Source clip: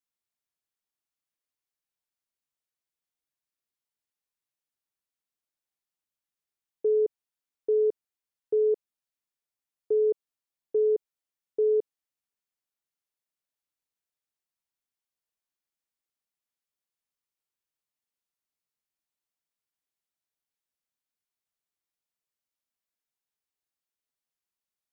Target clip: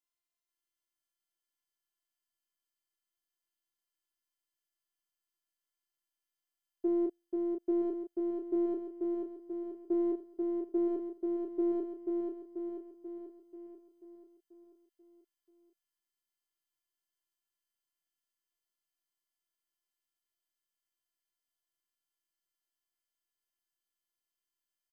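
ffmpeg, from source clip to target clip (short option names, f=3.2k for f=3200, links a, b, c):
-filter_complex "[0:a]bandreject=f=235.8:t=h:w=4,bandreject=f=471.6:t=h:w=4,afftfilt=real='hypot(re,im)*cos(PI*b)':imag='0':win_size=512:overlap=0.75,asplit=2[a][b];[b]adelay=30,volume=-5.5dB[c];[a][c]amix=inputs=2:normalize=0,asplit=2[d][e];[e]aecho=0:1:487|974|1461|1948|2435|2922|3409|3896:0.668|0.374|0.21|0.117|0.0657|0.0368|0.0206|0.0115[f];[d][f]amix=inputs=2:normalize=0"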